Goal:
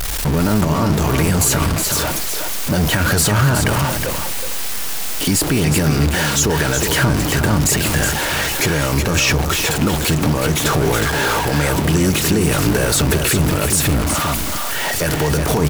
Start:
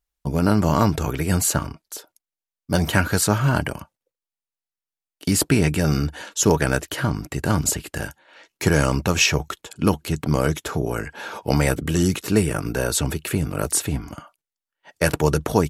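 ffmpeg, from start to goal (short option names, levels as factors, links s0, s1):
-af "aeval=exprs='val(0)+0.5*0.106*sgn(val(0))':c=same,alimiter=limit=0.237:level=0:latency=1:release=36,aecho=1:1:368:0.473,volume=1.68"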